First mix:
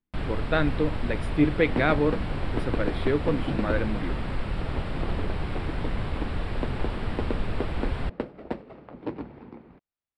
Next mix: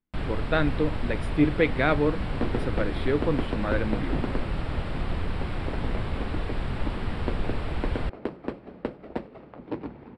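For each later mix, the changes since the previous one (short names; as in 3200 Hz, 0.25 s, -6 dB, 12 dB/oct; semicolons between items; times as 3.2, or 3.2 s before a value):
second sound: entry +0.65 s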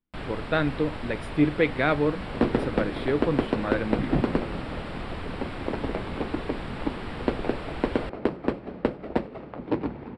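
first sound: add low shelf 170 Hz -10 dB; second sound +6.5 dB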